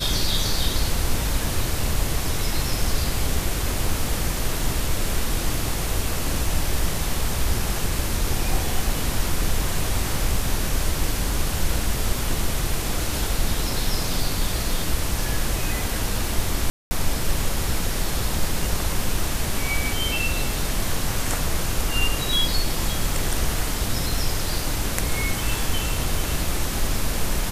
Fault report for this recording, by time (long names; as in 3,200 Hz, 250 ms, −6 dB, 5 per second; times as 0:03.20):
0:16.70–0:16.91: drop-out 210 ms